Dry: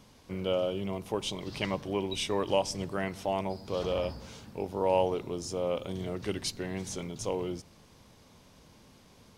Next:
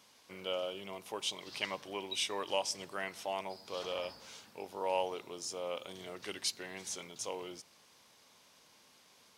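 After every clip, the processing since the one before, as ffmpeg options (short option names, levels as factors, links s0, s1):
-af "highpass=f=1300:p=1"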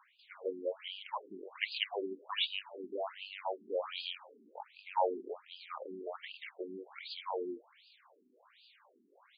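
-filter_complex "[0:a]acrossover=split=2500[s0][s1];[s1]adelay=190[s2];[s0][s2]amix=inputs=2:normalize=0,afftfilt=real='re*between(b*sr/1024,280*pow(3500/280,0.5+0.5*sin(2*PI*1.3*pts/sr))/1.41,280*pow(3500/280,0.5+0.5*sin(2*PI*1.3*pts/sr))*1.41)':imag='im*between(b*sr/1024,280*pow(3500/280,0.5+0.5*sin(2*PI*1.3*pts/sr))/1.41,280*pow(3500/280,0.5+0.5*sin(2*PI*1.3*pts/sr))*1.41)':win_size=1024:overlap=0.75,volume=2.51"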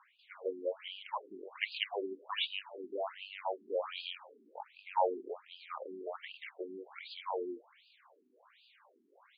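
-af "highpass=280,lowpass=3300,volume=1.12"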